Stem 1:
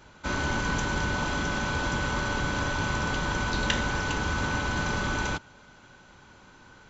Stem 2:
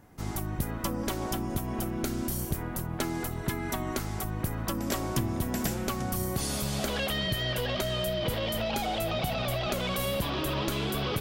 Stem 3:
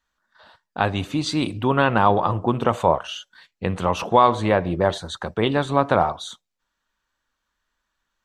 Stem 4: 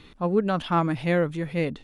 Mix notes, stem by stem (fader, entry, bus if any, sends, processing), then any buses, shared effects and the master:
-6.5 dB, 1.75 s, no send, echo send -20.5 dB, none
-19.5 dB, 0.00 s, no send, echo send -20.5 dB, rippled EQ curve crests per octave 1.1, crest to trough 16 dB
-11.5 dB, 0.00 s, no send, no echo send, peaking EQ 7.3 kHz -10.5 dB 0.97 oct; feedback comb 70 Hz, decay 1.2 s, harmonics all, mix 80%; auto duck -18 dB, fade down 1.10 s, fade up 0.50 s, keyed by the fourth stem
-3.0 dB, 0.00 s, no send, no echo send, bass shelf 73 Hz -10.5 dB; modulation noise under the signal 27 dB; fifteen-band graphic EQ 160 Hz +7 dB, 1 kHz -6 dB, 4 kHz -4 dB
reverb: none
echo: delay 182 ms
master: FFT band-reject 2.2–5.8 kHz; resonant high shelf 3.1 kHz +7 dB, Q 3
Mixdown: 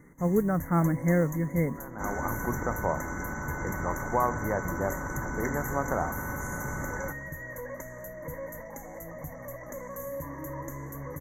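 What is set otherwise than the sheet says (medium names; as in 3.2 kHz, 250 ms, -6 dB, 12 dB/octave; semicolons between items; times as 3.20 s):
stem 2 -19.5 dB -> -11.0 dB; stem 3: missing feedback comb 70 Hz, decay 1.2 s, harmonics all, mix 80%; master: missing resonant high shelf 3.1 kHz +7 dB, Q 3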